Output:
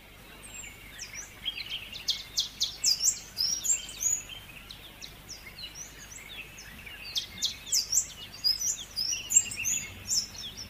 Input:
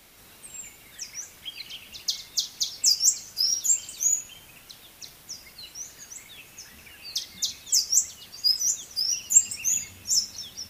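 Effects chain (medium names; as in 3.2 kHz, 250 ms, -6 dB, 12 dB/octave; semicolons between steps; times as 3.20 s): coarse spectral quantiser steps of 15 dB; hum 50 Hz, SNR 30 dB; resonant high shelf 4 kHz -6.5 dB, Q 1.5; trim +3.5 dB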